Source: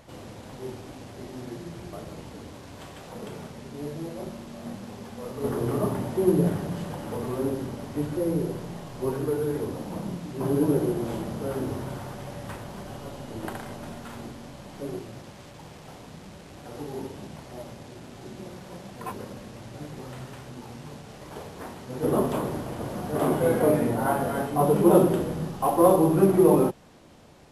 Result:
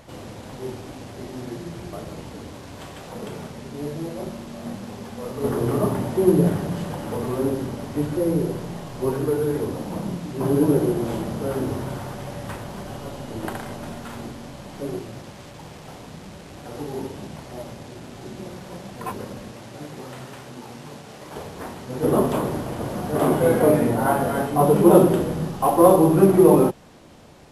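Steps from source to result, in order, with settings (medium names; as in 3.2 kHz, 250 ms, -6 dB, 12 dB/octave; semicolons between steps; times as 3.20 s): 19.52–21.34 s: high-pass 190 Hz 6 dB/octave; trim +4.5 dB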